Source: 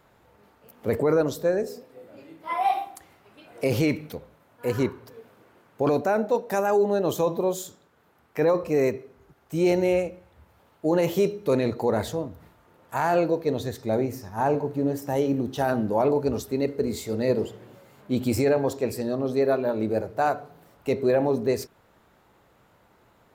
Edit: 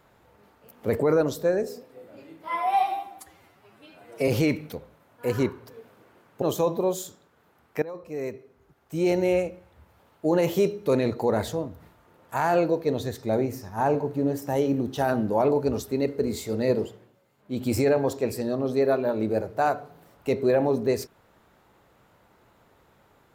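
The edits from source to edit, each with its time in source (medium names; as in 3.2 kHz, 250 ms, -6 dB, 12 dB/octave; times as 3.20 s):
2.48–3.68 s: stretch 1.5×
5.82–7.02 s: delete
8.42–10.00 s: fade in, from -19.5 dB
17.35–18.36 s: dip -14 dB, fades 0.38 s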